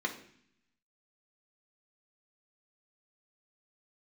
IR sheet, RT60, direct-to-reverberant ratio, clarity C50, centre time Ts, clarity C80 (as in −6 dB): 0.60 s, 0.0 dB, 11.0 dB, 12 ms, 14.5 dB